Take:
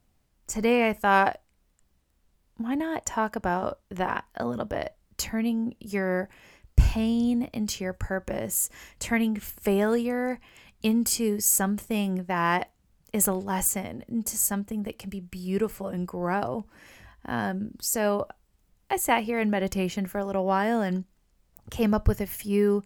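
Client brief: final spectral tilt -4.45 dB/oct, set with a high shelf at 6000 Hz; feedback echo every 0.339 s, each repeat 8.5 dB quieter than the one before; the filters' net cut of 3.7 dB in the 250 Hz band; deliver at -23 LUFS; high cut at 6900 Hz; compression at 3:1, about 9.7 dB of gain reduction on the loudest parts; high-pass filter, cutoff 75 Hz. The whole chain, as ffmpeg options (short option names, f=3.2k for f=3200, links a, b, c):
-af "highpass=75,lowpass=6.9k,equalizer=f=250:t=o:g=-4.5,highshelf=f=6k:g=-5.5,acompressor=threshold=-30dB:ratio=3,aecho=1:1:339|678|1017|1356:0.376|0.143|0.0543|0.0206,volume=11.5dB"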